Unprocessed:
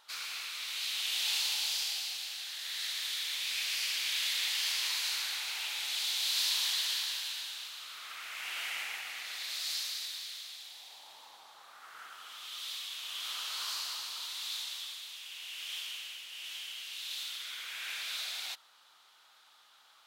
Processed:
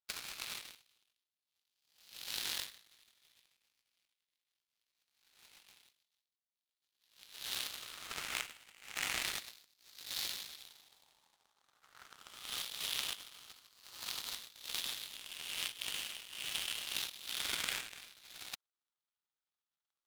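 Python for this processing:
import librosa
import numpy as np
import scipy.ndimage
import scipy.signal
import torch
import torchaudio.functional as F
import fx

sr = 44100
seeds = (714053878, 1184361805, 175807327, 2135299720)

y = fx.over_compress(x, sr, threshold_db=-42.0, ratio=-0.5)
y = fx.power_curve(y, sr, exponent=3.0)
y = y * 10.0 ** (13.0 / 20.0)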